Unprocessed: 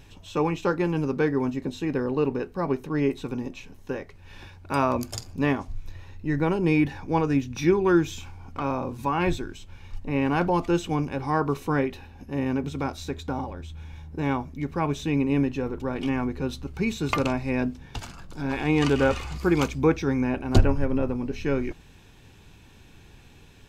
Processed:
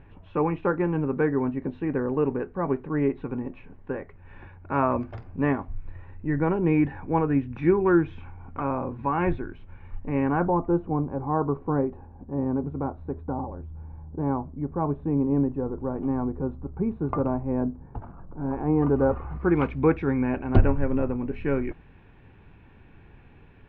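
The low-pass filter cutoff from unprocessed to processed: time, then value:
low-pass filter 24 dB per octave
0:10.19 2,000 Hz
0:10.65 1,100 Hz
0:19.08 1,100 Hz
0:19.71 2,300 Hz

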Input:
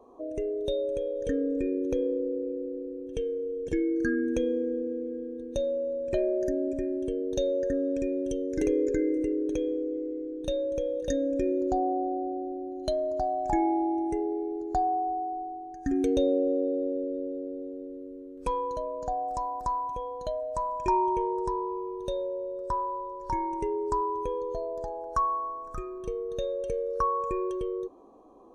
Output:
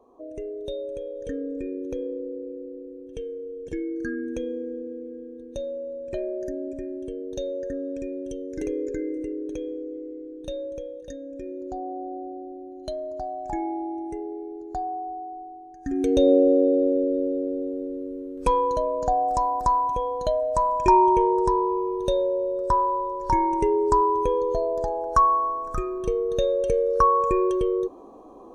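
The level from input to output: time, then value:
0:10.66 −3 dB
0:11.18 −10.5 dB
0:12.16 −3.5 dB
0:15.77 −3.5 dB
0:16.31 +8.5 dB

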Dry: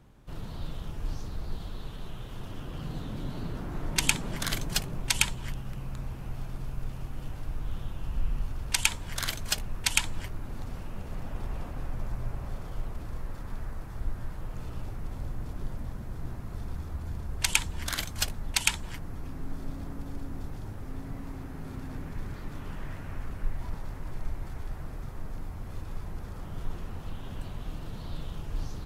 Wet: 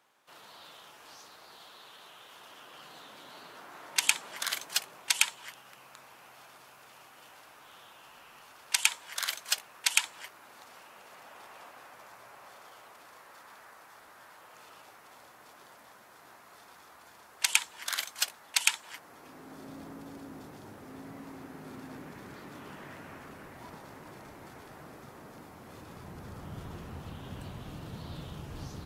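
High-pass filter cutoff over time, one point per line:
0:18.83 830 Hz
0:19.73 250 Hz
0:25.66 250 Hz
0:26.42 90 Hz

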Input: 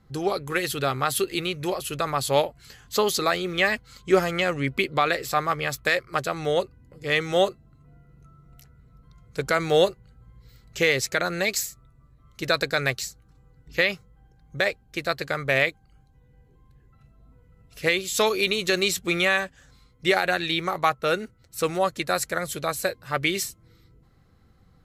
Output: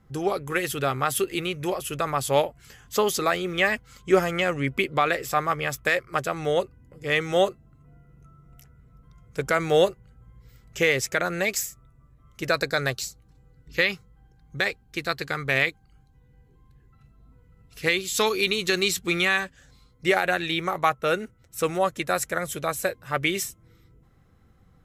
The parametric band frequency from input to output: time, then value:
parametric band −10.5 dB 0.28 octaves
0:12.42 4,200 Hz
0:13.90 600 Hz
0:19.43 600 Hz
0:20.15 4,400 Hz

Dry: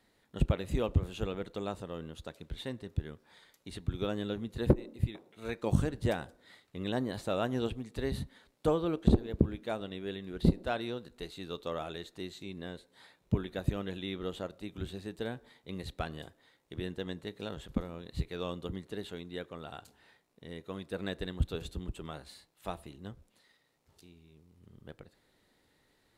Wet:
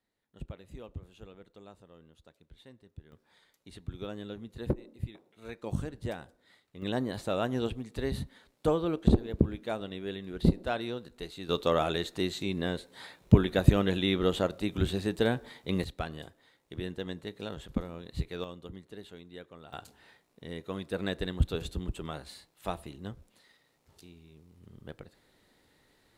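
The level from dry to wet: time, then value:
−14.5 dB
from 0:03.12 −5.5 dB
from 0:06.82 +1.5 dB
from 0:11.49 +10.5 dB
from 0:15.84 +1 dB
from 0:18.44 −6 dB
from 0:19.73 +4 dB

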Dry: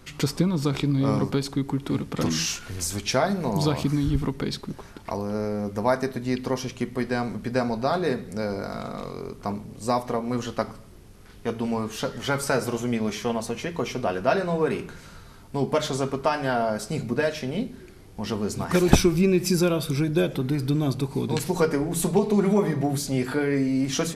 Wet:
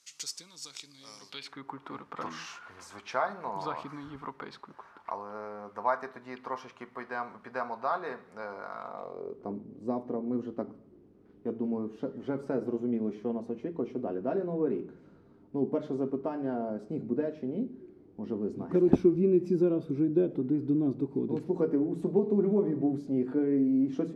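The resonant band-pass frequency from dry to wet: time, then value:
resonant band-pass, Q 2.2
0:01.19 6,400 Hz
0:01.64 1,100 Hz
0:08.79 1,100 Hz
0:09.56 310 Hz

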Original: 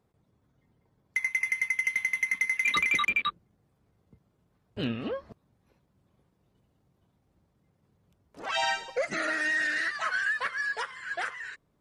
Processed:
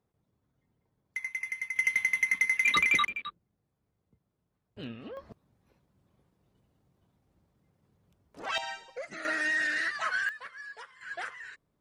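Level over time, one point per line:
−7 dB
from 0:01.76 +1 dB
from 0:03.07 −10 dB
from 0:05.17 −1 dB
from 0:08.58 −10.5 dB
from 0:09.25 −1 dB
from 0:10.29 −13 dB
from 0:11.01 −5 dB

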